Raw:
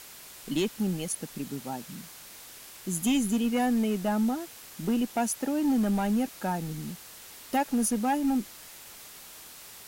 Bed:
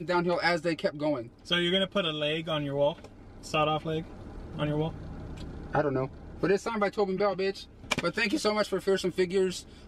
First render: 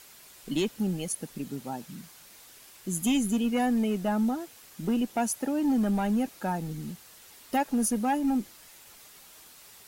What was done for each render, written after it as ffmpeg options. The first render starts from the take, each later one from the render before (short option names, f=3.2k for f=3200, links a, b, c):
-af "afftdn=nr=6:nf=-48"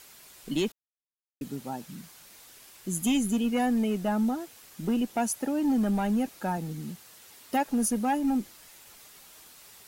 -filter_complex "[0:a]asettb=1/sr,asplit=3[a][b][c];[a]atrim=end=6.574[d];[b]atrim=start=6.57:end=7.68,asetpts=PTS-STARTPTS,afade=t=in:d=0.004:c=qsin,afade=t=out:st=1.106:d=0.004:c=qsin,highpass=71[e];[c]atrim=start=7.676[f];[d][e]acrossfade=d=0.004:c1=hsin:c2=qsin[g];[g][f]acrossfade=d=0.004:c1=qsin:c2=hsin,asplit=3[h][i][j];[h]atrim=end=0.72,asetpts=PTS-STARTPTS,afade=t=out:st=0.716:d=0.004:c=hsin[k];[i]atrim=start=0.72:end=1.41,asetpts=PTS-STARTPTS,volume=0[l];[j]atrim=start=1.41,asetpts=PTS-STARTPTS,afade=t=in:d=0.004:c=hsin[m];[k][l][m]concat=n=3:v=0:a=1"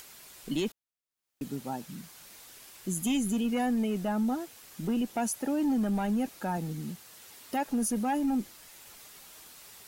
-af "acompressor=mode=upward:threshold=-47dB:ratio=2.5,alimiter=limit=-23dB:level=0:latency=1:release=17"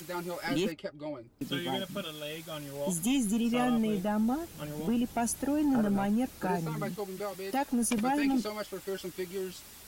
-filter_complex "[1:a]volume=-10dB[a];[0:a][a]amix=inputs=2:normalize=0"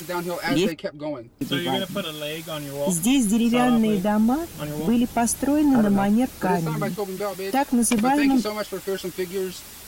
-af "volume=9dB"